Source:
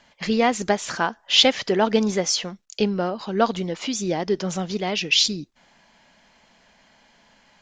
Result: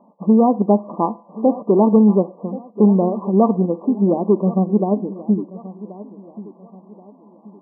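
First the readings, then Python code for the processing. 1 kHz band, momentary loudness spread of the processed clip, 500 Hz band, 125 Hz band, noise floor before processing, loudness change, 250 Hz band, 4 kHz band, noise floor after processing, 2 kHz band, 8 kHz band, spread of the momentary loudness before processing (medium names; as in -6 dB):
+3.0 dB, 20 LU, +5.5 dB, +10.0 dB, -59 dBFS, +4.5 dB, +10.5 dB, under -40 dB, -50 dBFS, under -40 dB, under -40 dB, 9 LU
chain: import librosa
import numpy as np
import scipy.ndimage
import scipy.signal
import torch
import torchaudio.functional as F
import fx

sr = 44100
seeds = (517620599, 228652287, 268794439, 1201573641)

p1 = fx.low_shelf(x, sr, hz=470.0, db=12.0)
p2 = fx.level_steps(p1, sr, step_db=18)
p3 = p1 + (p2 * 10.0 ** (-1.0 / 20.0))
p4 = 10.0 ** (-3.0 / 20.0) * np.tanh(p3 / 10.0 ** (-3.0 / 20.0))
p5 = fx.brickwall_bandpass(p4, sr, low_hz=170.0, high_hz=1200.0)
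p6 = p5 + fx.echo_feedback(p5, sr, ms=1081, feedback_pct=37, wet_db=-17.0, dry=0)
p7 = fx.rev_fdn(p6, sr, rt60_s=0.49, lf_ratio=0.7, hf_ratio=0.85, size_ms=29.0, drr_db=13.0)
y = p7 * 10.0 ** (-2.0 / 20.0)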